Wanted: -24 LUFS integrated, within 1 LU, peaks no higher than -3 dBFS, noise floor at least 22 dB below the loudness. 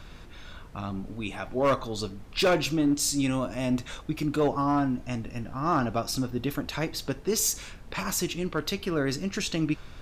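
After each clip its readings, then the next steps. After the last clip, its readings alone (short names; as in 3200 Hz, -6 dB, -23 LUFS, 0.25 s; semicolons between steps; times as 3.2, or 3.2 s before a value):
clipped 0.5%; flat tops at -17.5 dBFS; noise floor -46 dBFS; noise floor target -51 dBFS; loudness -28.5 LUFS; peak -17.5 dBFS; loudness target -24.0 LUFS
-> clip repair -17.5 dBFS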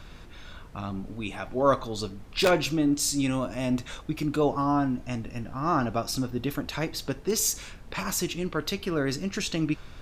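clipped 0.0%; noise floor -46 dBFS; noise floor target -50 dBFS
-> noise print and reduce 6 dB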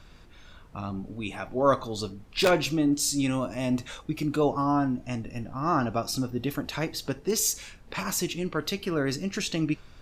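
noise floor -51 dBFS; loudness -28.0 LUFS; peak -8.5 dBFS; loudness target -24.0 LUFS
-> gain +4 dB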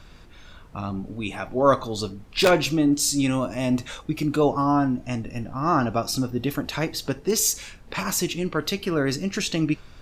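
loudness -24.0 LUFS; peak -4.5 dBFS; noise floor -47 dBFS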